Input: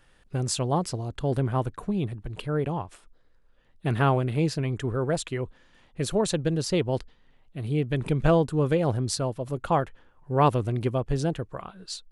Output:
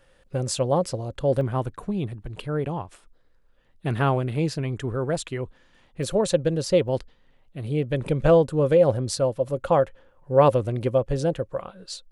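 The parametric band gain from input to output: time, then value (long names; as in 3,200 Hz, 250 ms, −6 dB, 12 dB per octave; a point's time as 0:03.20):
parametric band 540 Hz 0.25 octaves
+13.5 dB
from 0:01.41 +2 dB
from 0:06.03 +13 dB
from 0:06.88 +5.5 dB
from 0:07.66 +14 dB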